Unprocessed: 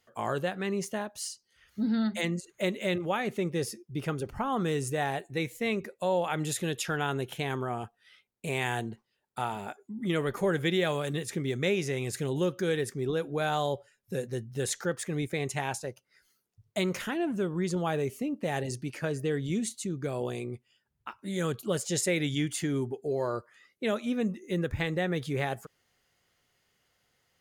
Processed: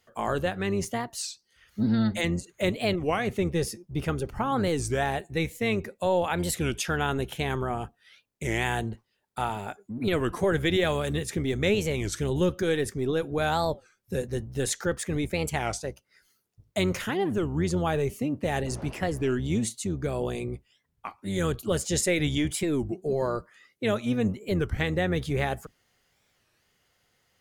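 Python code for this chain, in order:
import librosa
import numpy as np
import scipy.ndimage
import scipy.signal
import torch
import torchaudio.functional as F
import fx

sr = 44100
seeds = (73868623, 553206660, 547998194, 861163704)

y = fx.octave_divider(x, sr, octaves=1, level_db=-6.0)
y = fx.dmg_wind(y, sr, seeds[0], corner_hz=540.0, level_db=-38.0, at=(18.65, 19.35), fade=0.02)
y = fx.record_warp(y, sr, rpm=33.33, depth_cents=250.0)
y = F.gain(torch.from_numpy(y), 3.0).numpy()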